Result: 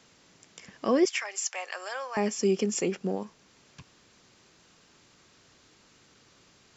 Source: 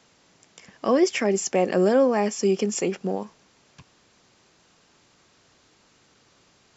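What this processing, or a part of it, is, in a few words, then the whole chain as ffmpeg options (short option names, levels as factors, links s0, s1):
parallel compression: -filter_complex "[0:a]asettb=1/sr,asplit=3[s0][s1][s2];[s0]atrim=end=1.054[s3];[s1]atrim=start=1.05:end=2.17,asetpts=PTS-STARTPTS,afade=t=in:d=0.004:c=qsin,afade=t=out:st=1.116:d=0.004:c=qsin,highpass=f=860:w=0.5412,highpass=f=860:w=1.3066[s4];[s2]atrim=start=2.166[s5];[s3][s4]acrossfade=d=0.004:c1=hsin:c2=qsin[s6];[s6][s5]acrossfade=d=0.004:c1=qsin:c2=hsin,asplit=2[s7][s8];[s8]acompressor=threshold=0.00708:ratio=6,volume=0.501[s9];[s7][s9]amix=inputs=2:normalize=0,equalizer=f=750:w=1.3:g=-3.5,volume=0.708"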